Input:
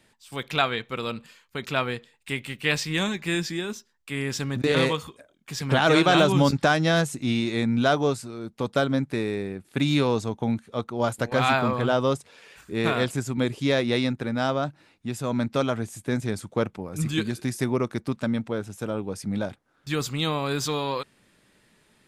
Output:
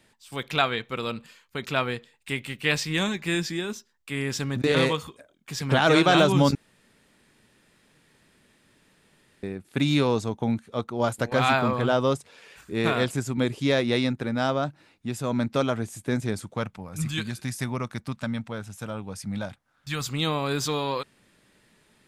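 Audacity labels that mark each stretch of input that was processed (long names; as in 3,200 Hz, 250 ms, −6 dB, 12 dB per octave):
6.550000	9.430000	fill with room tone
16.550000	20.090000	parametric band 370 Hz −11.5 dB 1.1 octaves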